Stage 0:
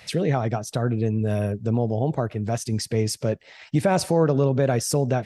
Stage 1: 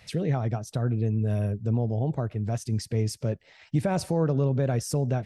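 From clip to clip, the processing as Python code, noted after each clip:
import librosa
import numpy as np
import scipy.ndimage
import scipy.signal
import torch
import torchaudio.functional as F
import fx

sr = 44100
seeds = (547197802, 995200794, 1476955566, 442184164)

y = fx.low_shelf(x, sr, hz=160.0, db=11.0)
y = F.gain(torch.from_numpy(y), -8.0).numpy()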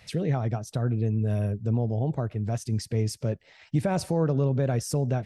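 y = x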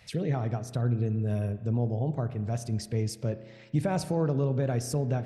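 y = fx.rev_spring(x, sr, rt60_s=1.4, pass_ms=(33,), chirp_ms=30, drr_db=11.5)
y = F.gain(torch.from_numpy(y), -2.5).numpy()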